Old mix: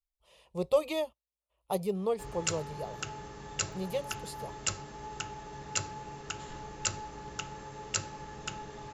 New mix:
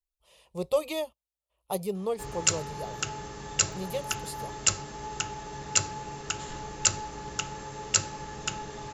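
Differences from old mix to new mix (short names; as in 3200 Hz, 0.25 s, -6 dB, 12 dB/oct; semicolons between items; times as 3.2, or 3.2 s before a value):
background +4.5 dB; master: add high shelf 5300 Hz +7.5 dB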